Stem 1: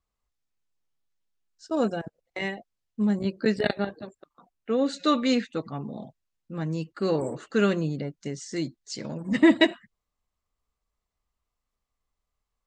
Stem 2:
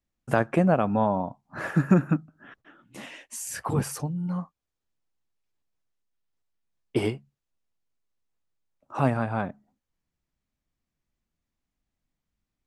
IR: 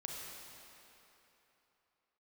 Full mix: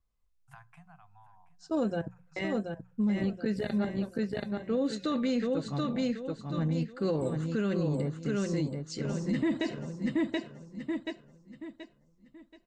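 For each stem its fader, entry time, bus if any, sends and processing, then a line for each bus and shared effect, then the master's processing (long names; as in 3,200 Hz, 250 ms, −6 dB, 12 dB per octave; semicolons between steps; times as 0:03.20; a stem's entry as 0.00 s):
+1.5 dB, 0.00 s, no send, echo send −5 dB, low-shelf EQ 240 Hz +11.5 dB
−9.0 dB, 0.20 s, no send, echo send −24 dB, Chebyshev band-stop filter 170–730 Hz, order 5; downward compressor, threshold −27 dBFS, peak gain reduction 8.5 dB; automatic ducking −15 dB, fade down 1.70 s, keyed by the first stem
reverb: not used
echo: repeating echo 729 ms, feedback 33%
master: mains-hum notches 60/120/180 Hz; tuned comb filter 510 Hz, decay 0.16 s, harmonics all, mix 60%; brickwall limiter −21.5 dBFS, peak gain reduction 11.5 dB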